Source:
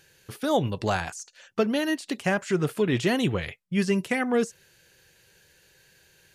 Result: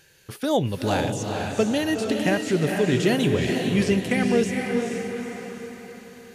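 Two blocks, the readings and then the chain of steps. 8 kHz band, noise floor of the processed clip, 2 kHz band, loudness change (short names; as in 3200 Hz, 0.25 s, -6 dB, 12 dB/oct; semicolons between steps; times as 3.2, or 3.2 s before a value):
+4.5 dB, -47 dBFS, +2.0 dB, +3.0 dB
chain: diffused feedback echo 0.458 s, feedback 47%, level -3 dB; dynamic EQ 1200 Hz, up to -7 dB, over -43 dBFS, Q 1.6; gain +2.5 dB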